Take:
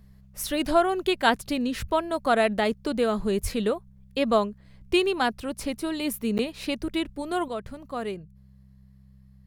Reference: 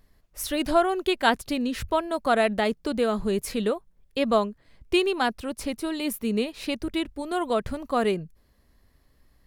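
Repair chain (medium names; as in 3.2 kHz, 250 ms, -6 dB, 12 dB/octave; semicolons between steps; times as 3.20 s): de-hum 65.4 Hz, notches 3; 3.42–3.54 s: high-pass 140 Hz 24 dB/octave; interpolate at 6.38 s, 9.2 ms; trim 0 dB, from 7.48 s +8 dB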